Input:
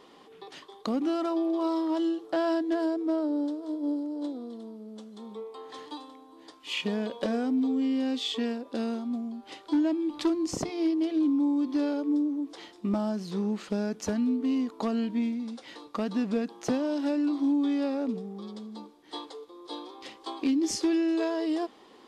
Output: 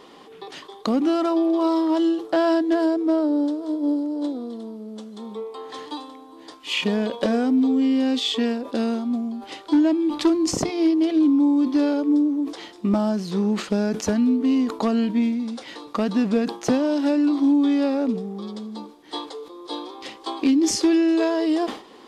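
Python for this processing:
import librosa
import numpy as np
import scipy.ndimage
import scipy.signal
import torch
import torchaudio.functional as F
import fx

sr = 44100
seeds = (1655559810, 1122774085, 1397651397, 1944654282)

y = fx.sustainer(x, sr, db_per_s=130.0)
y = y * 10.0 ** (7.5 / 20.0)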